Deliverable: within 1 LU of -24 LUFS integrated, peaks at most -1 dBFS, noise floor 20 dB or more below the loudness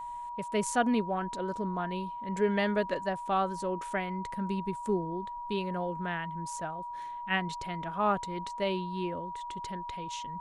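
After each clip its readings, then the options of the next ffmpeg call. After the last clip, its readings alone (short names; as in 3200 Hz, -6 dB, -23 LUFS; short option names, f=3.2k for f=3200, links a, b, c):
steady tone 960 Hz; tone level -37 dBFS; loudness -33.0 LUFS; peak -14.5 dBFS; loudness target -24.0 LUFS
-> -af "bandreject=f=960:w=30"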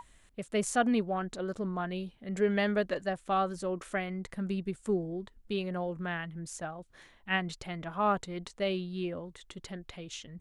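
steady tone none; loudness -33.5 LUFS; peak -15.5 dBFS; loudness target -24.0 LUFS
-> -af "volume=9.5dB"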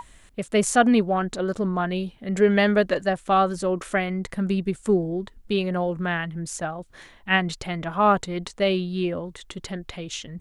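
loudness -24.0 LUFS; peak -6.0 dBFS; noise floor -53 dBFS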